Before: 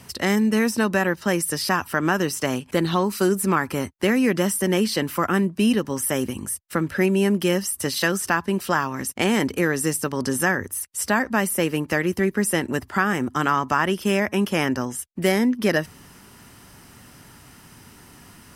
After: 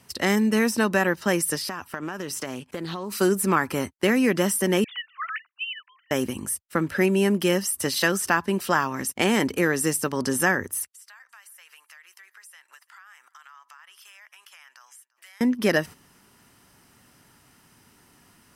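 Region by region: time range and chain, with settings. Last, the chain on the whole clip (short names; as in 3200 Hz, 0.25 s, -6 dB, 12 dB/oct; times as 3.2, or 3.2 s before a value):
1.55–3.12 compressor 12:1, threshold -26 dBFS + Doppler distortion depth 0.11 ms
4.84–6.11 sine-wave speech + Bessel high-pass 1900 Hz, order 6
10.89–15.41 HPF 1100 Hz 24 dB/oct + compressor, threshold -37 dBFS + echo 0.343 s -23 dB
whole clip: gate -35 dBFS, range -9 dB; low shelf 140 Hz -6 dB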